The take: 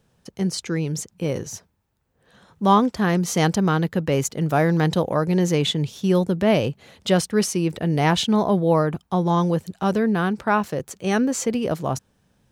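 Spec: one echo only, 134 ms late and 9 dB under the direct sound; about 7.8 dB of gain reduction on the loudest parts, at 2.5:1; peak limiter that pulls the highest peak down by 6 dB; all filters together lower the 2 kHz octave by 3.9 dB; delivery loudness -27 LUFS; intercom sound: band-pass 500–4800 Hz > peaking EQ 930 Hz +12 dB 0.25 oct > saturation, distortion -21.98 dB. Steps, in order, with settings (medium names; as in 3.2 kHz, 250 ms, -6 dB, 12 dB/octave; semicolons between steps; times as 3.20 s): peaking EQ 2 kHz -5.5 dB; compression 2.5:1, threshold -25 dBFS; peak limiter -20 dBFS; band-pass 500–4800 Hz; peaking EQ 930 Hz +12 dB 0.25 oct; delay 134 ms -9 dB; saturation -19 dBFS; trim +6.5 dB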